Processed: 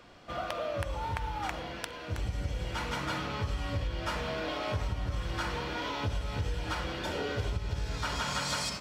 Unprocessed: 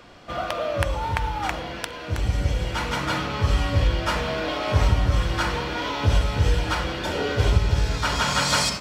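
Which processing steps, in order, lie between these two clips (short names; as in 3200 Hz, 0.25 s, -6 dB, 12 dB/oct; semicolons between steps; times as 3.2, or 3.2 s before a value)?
compressor, threshold -22 dBFS, peak gain reduction 10 dB; gain -7 dB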